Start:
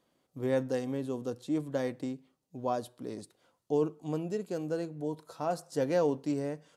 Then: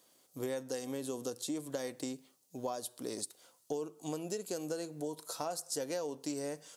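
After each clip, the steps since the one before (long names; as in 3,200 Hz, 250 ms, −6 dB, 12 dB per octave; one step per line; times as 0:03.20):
bass and treble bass −9 dB, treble +15 dB
downward compressor 10 to 1, threshold −37 dBFS, peak gain reduction 13.5 dB
level +3 dB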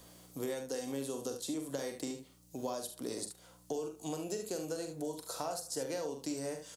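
mains hum 60 Hz, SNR 26 dB
ambience of single reflections 44 ms −7.5 dB, 73 ms −10 dB
multiband upward and downward compressor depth 40%
level −1 dB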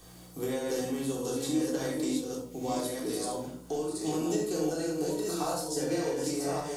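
delay that plays each chunk backwards 600 ms, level −3 dB
rectangular room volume 620 cubic metres, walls furnished, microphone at 3.6 metres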